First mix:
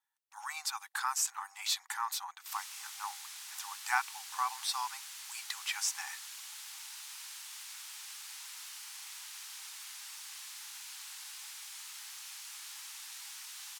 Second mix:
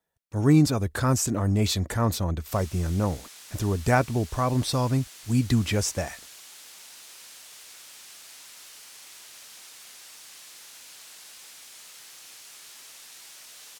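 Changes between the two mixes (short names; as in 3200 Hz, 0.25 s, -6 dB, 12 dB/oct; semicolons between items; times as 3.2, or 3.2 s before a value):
speech +4.0 dB; master: remove brick-wall FIR high-pass 760 Hz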